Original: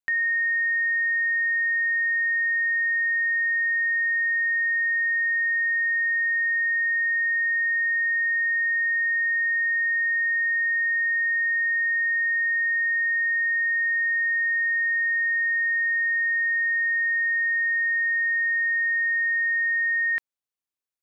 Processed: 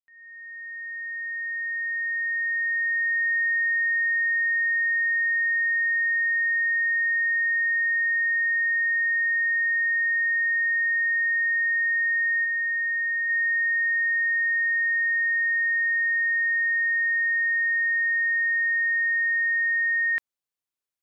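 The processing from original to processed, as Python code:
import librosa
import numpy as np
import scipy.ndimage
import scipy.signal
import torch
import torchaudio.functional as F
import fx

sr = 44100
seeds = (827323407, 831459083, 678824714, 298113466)

y = fx.fade_in_head(x, sr, length_s=3.35)
y = fx.air_absorb(y, sr, metres=280.0, at=(12.44, 13.28), fade=0.02)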